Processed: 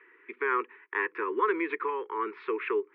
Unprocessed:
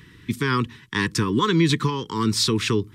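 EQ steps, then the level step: Chebyshev band-pass 380–2400 Hz, order 4; distance through air 180 m; -1.5 dB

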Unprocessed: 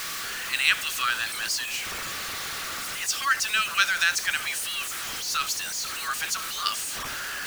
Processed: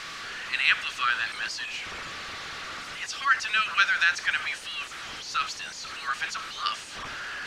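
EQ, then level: low-pass 4.4 kHz 12 dB/octave; dynamic bell 1.6 kHz, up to +4 dB, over -34 dBFS, Q 0.94; -2.5 dB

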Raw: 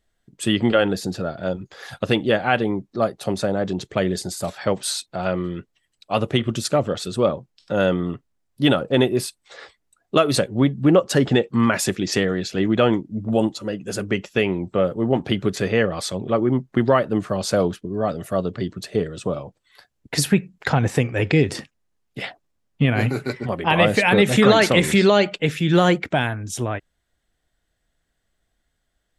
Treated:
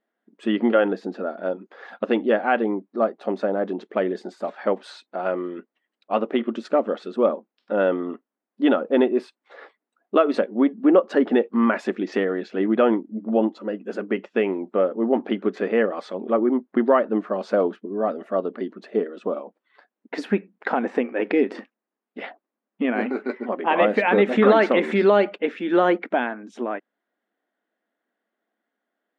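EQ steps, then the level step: brick-wall FIR high-pass 200 Hz; low-pass 1.7 kHz 12 dB/octave; 0.0 dB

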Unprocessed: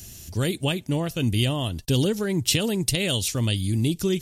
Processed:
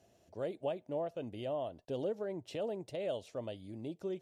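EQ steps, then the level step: band-pass filter 620 Hz, Q 3.5; -1.5 dB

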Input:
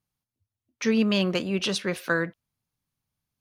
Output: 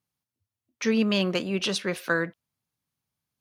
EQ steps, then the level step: high-pass 120 Hz 6 dB/octave; 0.0 dB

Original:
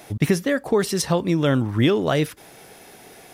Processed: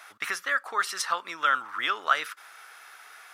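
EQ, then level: resonant high-pass 1.3 kHz, resonance Q 5.1; treble shelf 9.7 kHz -6.5 dB; -4.0 dB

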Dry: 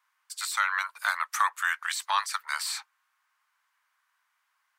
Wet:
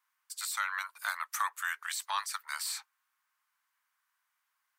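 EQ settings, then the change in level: treble shelf 6.7 kHz +8 dB; peaking EQ 14 kHz +2.5 dB 0.34 oct; hum notches 60/120/180/240/300/360/420 Hz; -7.5 dB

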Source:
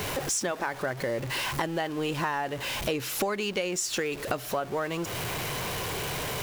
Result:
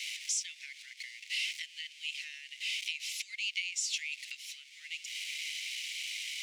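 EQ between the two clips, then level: Chebyshev high-pass 2.1 kHz, order 6; distance through air 100 m; treble shelf 5.3 kHz +7 dB; 0.0 dB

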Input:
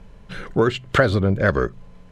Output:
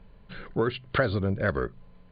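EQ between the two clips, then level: brick-wall FIR low-pass 4.8 kHz; -8.0 dB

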